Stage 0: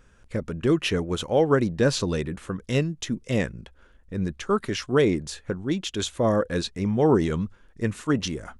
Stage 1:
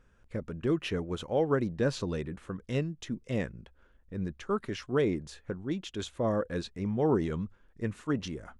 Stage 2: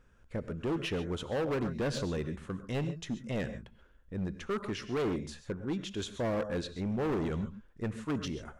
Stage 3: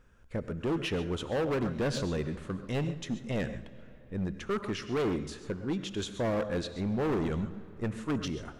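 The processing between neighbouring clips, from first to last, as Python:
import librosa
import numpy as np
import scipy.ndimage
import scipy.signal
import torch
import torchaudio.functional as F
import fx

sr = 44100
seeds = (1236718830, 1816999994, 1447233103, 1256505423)

y1 = fx.high_shelf(x, sr, hz=3600.0, db=-8.0)
y1 = F.gain(torch.from_numpy(y1), -7.0).numpy()
y2 = fx.rev_gated(y1, sr, seeds[0], gate_ms=160, shape='rising', drr_db=11.5)
y2 = np.clip(10.0 ** (28.5 / 20.0) * y2, -1.0, 1.0) / 10.0 ** (28.5 / 20.0)
y3 = fx.rev_freeverb(y2, sr, rt60_s=3.8, hf_ratio=0.65, predelay_ms=75, drr_db=17.0)
y3 = F.gain(torch.from_numpy(y3), 2.0).numpy()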